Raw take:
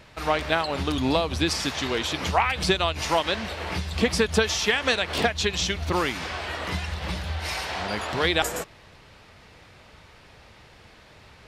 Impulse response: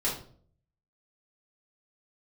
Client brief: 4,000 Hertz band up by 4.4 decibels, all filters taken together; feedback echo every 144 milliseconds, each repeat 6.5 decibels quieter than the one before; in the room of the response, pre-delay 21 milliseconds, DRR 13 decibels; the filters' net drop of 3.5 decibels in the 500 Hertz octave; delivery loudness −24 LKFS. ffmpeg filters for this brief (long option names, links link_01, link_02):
-filter_complex "[0:a]equalizer=frequency=500:width_type=o:gain=-4.5,equalizer=frequency=4000:width_type=o:gain=5.5,aecho=1:1:144|288|432|576|720|864:0.473|0.222|0.105|0.0491|0.0231|0.0109,asplit=2[link_01][link_02];[1:a]atrim=start_sample=2205,adelay=21[link_03];[link_02][link_03]afir=irnorm=-1:irlink=0,volume=-20.5dB[link_04];[link_01][link_04]amix=inputs=2:normalize=0,volume=-1.5dB"